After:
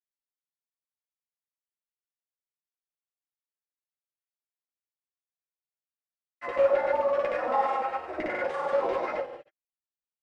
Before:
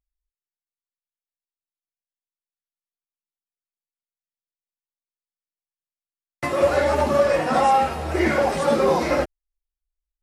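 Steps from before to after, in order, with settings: LFO band-pass saw down 7.8 Hz 450–2400 Hz; non-linear reverb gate 0.2 s falling, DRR -2.5 dB; grains, pitch spread up and down by 0 st; gain -5.5 dB

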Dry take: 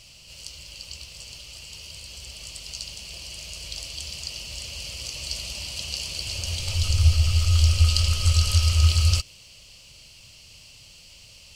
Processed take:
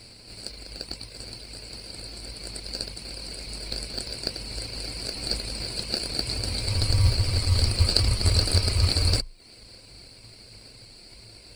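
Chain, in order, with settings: reverb removal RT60 0.59 s; ripple EQ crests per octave 0.94, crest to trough 18 dB; in parallel at -6 dB: sample-and-hold 42×; on the sum: gain -3 dB

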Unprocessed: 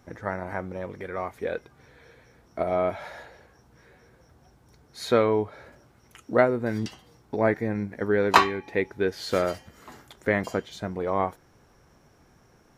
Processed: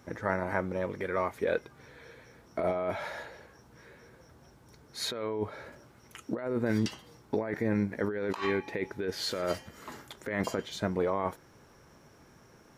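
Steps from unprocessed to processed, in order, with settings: low shelf 63 Hz -10 dB; notch 740 Hz, Q 12; negative-ratio compressor -29 dBFS, ratio -1; gain -1.5 dB

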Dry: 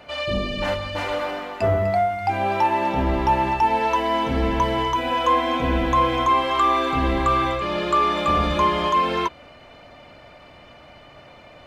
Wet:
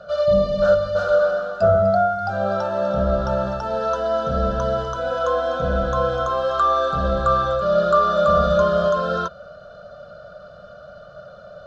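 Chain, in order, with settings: EQ curve 120 Hz 0 dB, 190 Hz +7 dB, 290 Hz -19 dB, 600 Hz +12 dB, 930 Hz -17 dB, 1400 Hz +14 dB, 2100 Hz -28 dB, 3700 Hz -1 dB, 6000 Hz -1 dB, 12000 Hz -21 dB

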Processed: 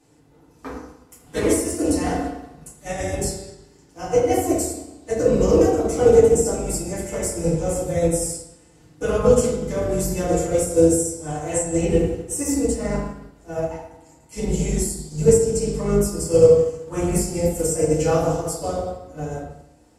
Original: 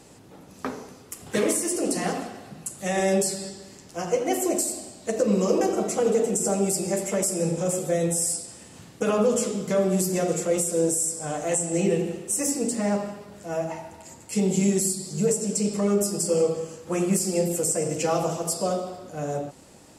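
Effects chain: octaver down 2 oct, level -5 dB; FDN reverb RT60 1 s, low-frequency decay 1.1×, high-frequency decay 0.4×, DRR -7 dB; upward expander 1.5:1, over -35 dBFS; gain -1 dB

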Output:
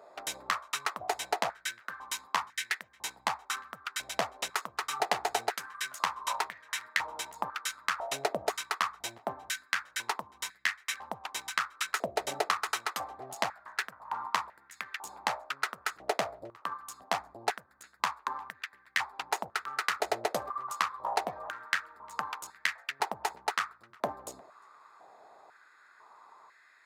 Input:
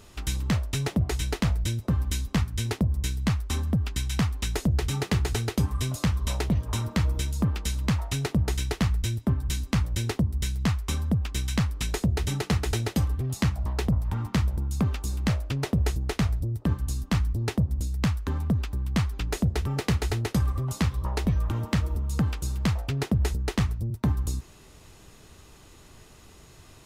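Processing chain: Wiener smoothing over 15 samples; tape echo 0.355 s, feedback 39%, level -24 dB, low-pass 2800 Hz; stepped high-pass 2 Hz 630–1800 Hz

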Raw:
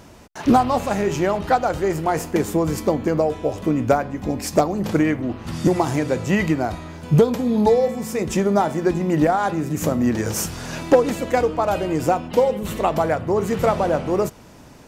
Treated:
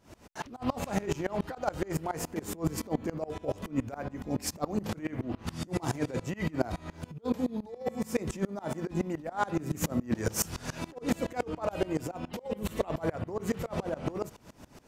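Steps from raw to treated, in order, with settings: negative-ratio compressor -21 dBFS, ratio -0.5; dB-ramp tremolo swelling 7.1 Hz, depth 24 dB; gain -3 dB

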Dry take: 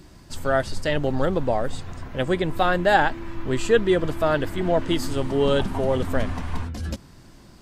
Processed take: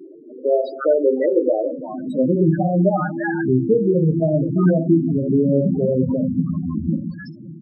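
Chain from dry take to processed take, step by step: bell 74 Hz -3 dB 0.67 oct; compressor 5:1, threshold -25 dBFS, peak gain reduction 12 dB; high-pass sweep 380 Hz -> 170 Hz, 1.33–2.71; bands offset in time lows, highs 0.34 s, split 890 Hz; shoebox room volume 87 m³, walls mixed, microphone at 0.5 m; loudest bins only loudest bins 8; gain +9 dB

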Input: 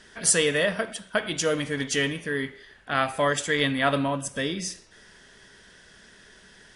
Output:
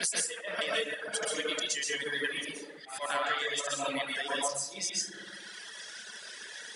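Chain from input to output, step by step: slices in reverse order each 0.204 s, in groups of 2; weighting filter A; darkening echo 63 ms, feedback 84%, low-pass 1600 Hz, level -9 dB; auto swell 0.226 s; high shelf 3500 Hz +10.5 dB; compressor 16:1, threshold -33 dBFS, peak gain reduction 25.5 dB; HPF 110 Hz; plate-style reverb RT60 0.7 s, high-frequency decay 0.75×, pre-delay 0.11 s, DRR -3 dB; reverb removal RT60 1.7 s; gain +2.5 dB

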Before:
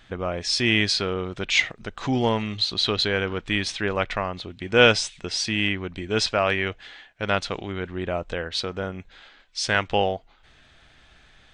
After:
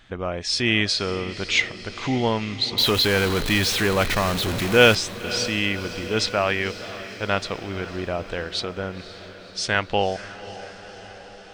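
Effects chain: 2.78–4.95 zero-crossing step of -21 dBFS; diffused feedback echo 0.522 s, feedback 66%, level -14.5 dB

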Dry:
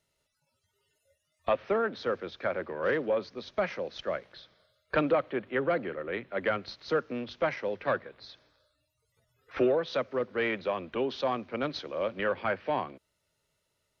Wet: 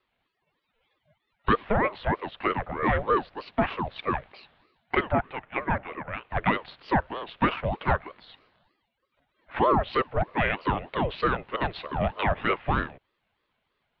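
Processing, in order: mistuned SSB -170 Hz 360–3500 Hz; 4.95–6.3 three-band isolator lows -14 dB, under 380 Hz, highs -14 dB, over 2300 Hz; ring modulator with a swept carrier 530 Hz, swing 60%, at 3.2 Hz; gain +8 dB

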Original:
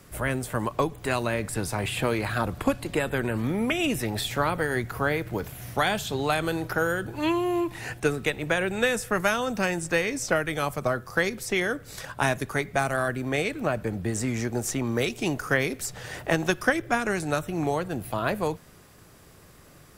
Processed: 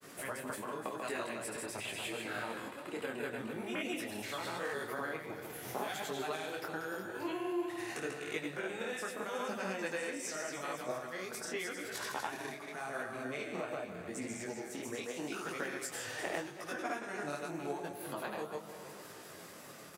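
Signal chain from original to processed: compressor 6:1, threshold -40 dBFS, peak gain reduction 22 dB; HPF 250 Hz 12 dB/oct; on a send: feedback echo 0.157 s, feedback 60%, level -6 dB; on the sum: grains, pitch spread up and down by 0 st; detuned doubles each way 29 cents; gain +7.5 dB

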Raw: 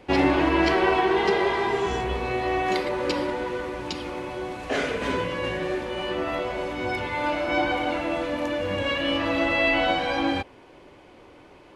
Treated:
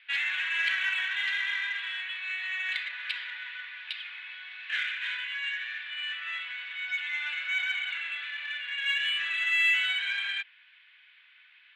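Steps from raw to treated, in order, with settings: elliptic band-pass 1600–3700 Hz, stop band 80 dB; in parallel at -8.5 dB: soft clip -31 dBFS, distortion -9 dB

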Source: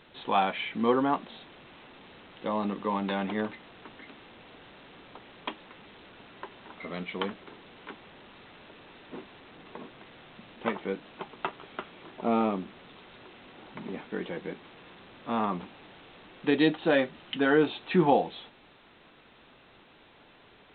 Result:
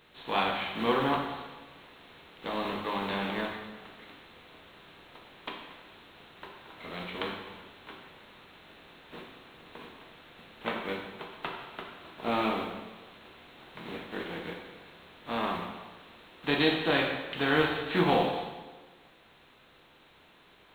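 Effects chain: spectral contrast lowered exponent 0.58; plate-style reverb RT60 1.3 s, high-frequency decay 0.9×, DRR 0 dB; gain -5 dB

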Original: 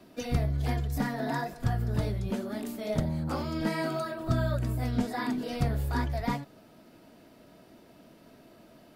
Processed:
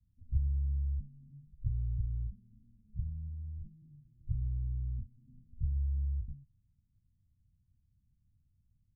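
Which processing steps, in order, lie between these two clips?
inverse Chebyshev low-pass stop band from 570 Hz, stop band 80 dB

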